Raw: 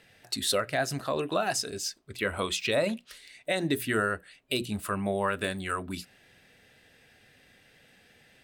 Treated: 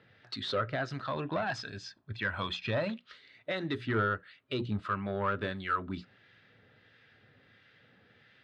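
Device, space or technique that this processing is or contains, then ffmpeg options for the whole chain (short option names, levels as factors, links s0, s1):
guitar amplifier with harmonic tremolo: -filter_complex "[0:a]asettb=1/sr,asplit=3[s0][s1][s2];[s0]atrim=end=1.074[s3];[s1]atrim=start=1.07:end=2.9,asetpts=PTS-STARTPTS,afade=t=in:d=0.004:c=qsin,afade=t=out:st=1.826:d=0.004:c=qsin,aecho=1:1:1.2:0.54,atrim=end_sample=80703[s4];[s2]atrim=start=2.896[s5];[s3][s4]acrossfade=d=0.004:c1=hsin:c2=qsin[s6];[s6][s5]acrossfade=d=0.004:c1=qsin:c2=hsin,acrossover=split=1200[s7][s8];[s7]aeval=exprs='val(0)*(1-0.5/2+0.5/2*cos(2*PI*1.5*n/s))':c=same[s9];[s8]aeval=exprs='val(0)*(1-0.5/2-0.5/2*cos(2*PI*1.5*n/s))':c=same[s10];[s9][s10]amix=inputs=2:normalize=0,asoftclip=type=tanh:threshold=0.0631,highpass=85,equalizer=f=110:t=q:w=4:g=9,equalizer=f=720:t=q:w=4:g=-5,equalizer=f=1300:t=q:w=4:g=7,equalizer=f=2600:t=q:w=4:g=-5,lowpass=f=4000:w=0.5412,lowpass=f=4000:w=1.3066"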